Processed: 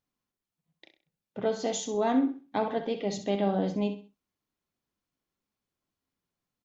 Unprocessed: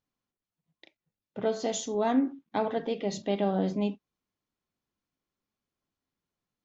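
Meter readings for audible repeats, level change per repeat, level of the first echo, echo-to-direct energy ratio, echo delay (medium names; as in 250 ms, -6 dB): 3, -10.0 dB, -10.5 dB, -10.0 dB, 65 ms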